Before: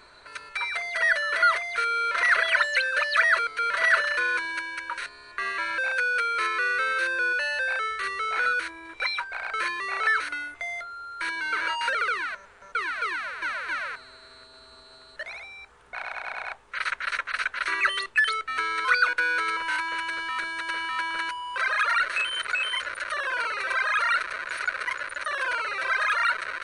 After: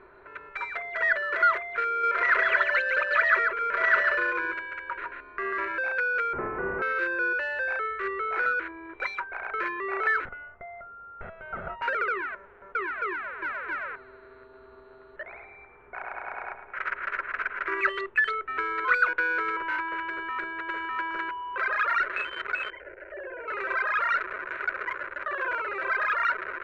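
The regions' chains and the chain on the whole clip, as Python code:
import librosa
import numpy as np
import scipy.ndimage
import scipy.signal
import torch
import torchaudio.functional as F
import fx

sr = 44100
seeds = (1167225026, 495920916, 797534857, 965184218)

y = fx.chain(x, sr, fx.high_shelf(hz=7800.0, db=-11.5),
    fx.echo_single(ms=142, db=-4.0), at=(1.89, 5.68))
y = fx.chain(y, sr, fx.cvsd(bps=16000),
    fx.lowpass(hz=1200.0, slope=12), at=(6.33, 6.82))
y = fx.chain(y, sr, fx.lower_of_two(delay_ms=1.5),
    fx.lowpass(hz=1200.0, slope=12),
    fx.peak_eq(hz=320.0, db=-12.0, octaves=0.45), at=(10.25, 11.82))
y = fx.chain(y, sr, fx.bass_treble(bass_db=0, treble_db=-14),
    fx.echo_feedback(ms=109, feedback_pct=55, wet_db=-9.5), at=(15.22, 17.78))
y = fx.chain(y, sr, fx.moving_average(points=12),
    fx.fixed_phaser(hz=480.0, stages=4), at=(22.7, 23.48))
y = fx.wiener(y, sr, points=9)
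y = scipy.signal.sosfilt(scipy.signal.butter(2, 2300.0, 'lowpass', fs=sr, output='sos'), y)
y = fx.peak_eq(y, sr, hz=380.0, db=12.5, octaves=0.3)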